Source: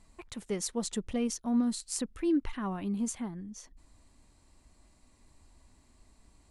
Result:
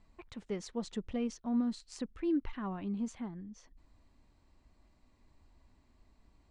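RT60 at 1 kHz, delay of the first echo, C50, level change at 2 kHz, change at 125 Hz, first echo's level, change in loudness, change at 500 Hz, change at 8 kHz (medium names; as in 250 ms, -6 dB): no reverb, no echo, no reverb, -5.0 dB, -3.5 dB, no echo, -4.5 dB, -4.0 dB, -15.5 dB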